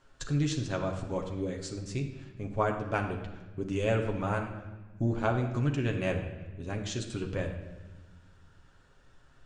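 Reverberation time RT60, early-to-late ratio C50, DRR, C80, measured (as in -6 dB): 1.2 s, 7.5 dB, 1.5 dB, 9.5 dB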